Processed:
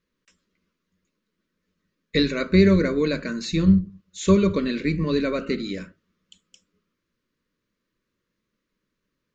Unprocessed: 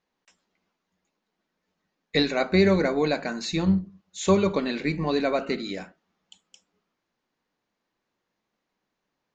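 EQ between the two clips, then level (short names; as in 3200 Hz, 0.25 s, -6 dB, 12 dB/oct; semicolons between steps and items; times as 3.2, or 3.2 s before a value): Butterworth band-stop 780 Hz, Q 1.6; low shelf 180 Hz +11.5 dB; notches 50/100/150 Hz; 0.0 dB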